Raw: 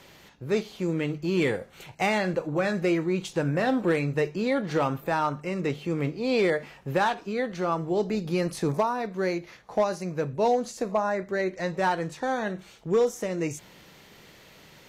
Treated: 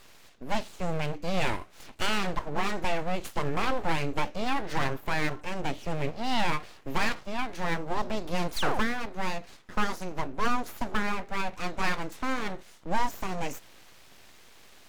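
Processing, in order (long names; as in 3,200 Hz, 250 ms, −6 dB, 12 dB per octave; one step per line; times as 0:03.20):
sound drawn into the spectrogram fall, 0:08.56–0:08.79, 310–2,500 Hz −26 dBFS
full-wave rectification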